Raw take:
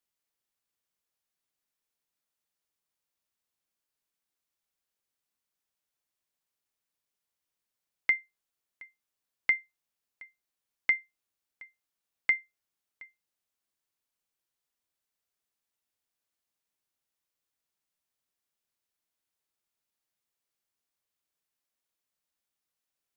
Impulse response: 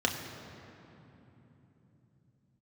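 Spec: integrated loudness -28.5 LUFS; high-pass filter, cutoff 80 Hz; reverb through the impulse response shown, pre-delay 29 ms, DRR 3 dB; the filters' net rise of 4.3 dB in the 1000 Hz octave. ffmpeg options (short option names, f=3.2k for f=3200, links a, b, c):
-filter_complex "[0:a]highpass=80,equalizer=f=1k:t=o:g=5.5,asplit=2[a][b];[1:a]atrim=start_sample=2205,adelay=29[c];[b][c]afir=irnorm=-1:irlink=0,volume=-12.5dB[d];[a][d]amix=inputs=2:normalize=0,volume=-0.5dB"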